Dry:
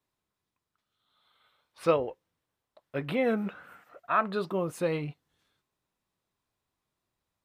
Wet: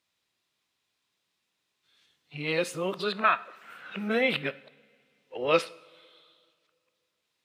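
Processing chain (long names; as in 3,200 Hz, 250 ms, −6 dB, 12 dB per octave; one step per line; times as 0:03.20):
played backwards from end to start
meter weighting curve D
coupled-rooms reverb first 0.56 s, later 2.5 s, from −18 dB, DRR 14 dB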